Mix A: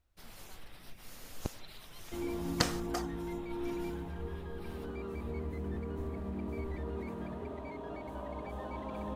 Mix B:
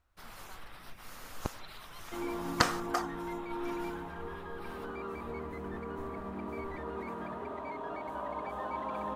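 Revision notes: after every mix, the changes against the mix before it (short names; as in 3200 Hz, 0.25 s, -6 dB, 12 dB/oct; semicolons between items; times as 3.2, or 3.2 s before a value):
background: add HPF 200 Hz 6 dB/oct; master: add bell 1200 Hz +10 dB 1.4 oct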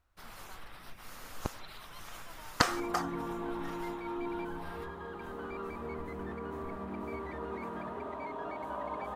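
background: entry +0.55 s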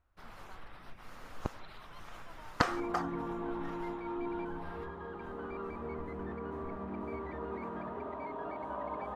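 master: add LPF 1900 Hz 6 dB/oct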